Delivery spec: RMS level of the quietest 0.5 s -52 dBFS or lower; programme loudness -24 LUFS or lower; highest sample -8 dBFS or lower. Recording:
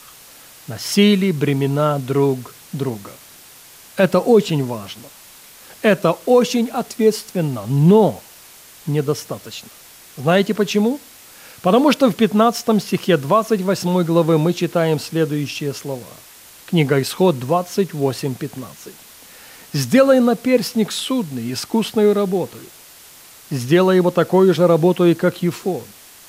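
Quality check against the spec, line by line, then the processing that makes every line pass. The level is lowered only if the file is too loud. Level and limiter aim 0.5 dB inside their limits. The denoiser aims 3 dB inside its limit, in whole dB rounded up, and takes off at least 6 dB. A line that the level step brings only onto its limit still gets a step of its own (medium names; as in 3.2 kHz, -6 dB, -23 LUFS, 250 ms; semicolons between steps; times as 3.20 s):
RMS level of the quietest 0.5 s -43 dBFS: fail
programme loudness -17.5 LUFS: fail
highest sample -3.0 dBFS: fail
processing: noise reduction 6 dB, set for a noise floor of -43 dBFS; trim -7 dB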